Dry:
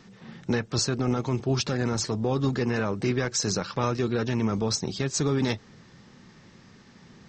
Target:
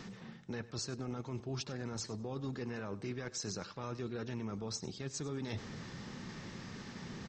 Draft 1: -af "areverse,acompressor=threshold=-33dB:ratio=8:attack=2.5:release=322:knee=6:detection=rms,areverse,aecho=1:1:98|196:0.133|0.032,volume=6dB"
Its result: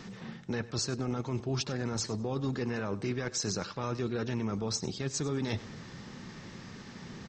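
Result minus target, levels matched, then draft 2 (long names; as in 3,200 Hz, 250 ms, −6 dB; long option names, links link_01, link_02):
downward compressor: peak gain reduction −7.5 dB
-af "areverse,acompressor=threshold=-41.5dB:ratio=8:attack=2.5:release=322:knee=6:detection=rms,areverse,aecho=1:1:98|196:0.133|0.032,volume=6dB"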